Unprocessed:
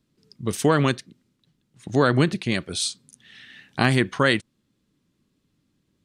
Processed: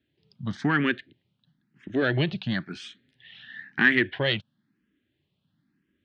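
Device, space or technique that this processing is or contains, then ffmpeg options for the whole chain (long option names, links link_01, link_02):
barber-pole phaser into a guitar amplifier: -filter_complex "[0:a]asettb=1/sr,asplit=3[link_01][link_02][link_03];[link_01]atrim=end=2.844[link_04];[link_02]atrim=start=2.84:end=3.99,asetpts=PTS-STARTPTS,afade=type=in:duration=0.004:curve=qsin,afade=type=out:start_time=1.146:duration=0.004:curve=qsin,equalizer=frequency=1900:width=3.3:gain=7[link_05];[link_03]atrim=start=3.986[link_06];[link_04][link_05]acrossfade=duration=0.004:curve1=hsin:curve2=qsin[link_07];[link_07][link_06]acrossfade=duration=0.004:curve1=qsin:curve2=hsin,asplit=2[link_08][link_09];[link_09]afreqshift=0.99[link_10];[link_08][link_10]amix=inputs=2:normalize=1,asoftclip=type=tanh:threshold=-13.5dB,highpass=76,equalizer=frequency=480:width_type=q:width=4:gain=-7,equalizer=frequency=1100:width_type=q:width=4:gain=-6,equalizer=frequency=1700:width_type=q:width=4:gain=8,equalizer=frequency=3100:width_type=q:width=4:gain=4,lowpass=frequency=3800:width=0.5412,lowpass=frequency=3800:width=1.3066"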